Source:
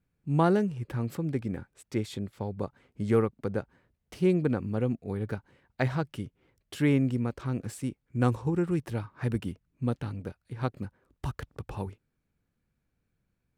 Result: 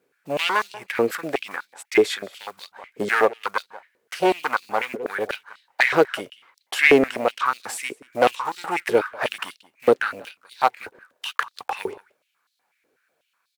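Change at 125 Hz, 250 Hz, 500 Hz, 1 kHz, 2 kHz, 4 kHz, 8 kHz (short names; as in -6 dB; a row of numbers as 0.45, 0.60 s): -14.5, -1.0, +10.0, +13.5, +19.0, +17.5, +13.0 dB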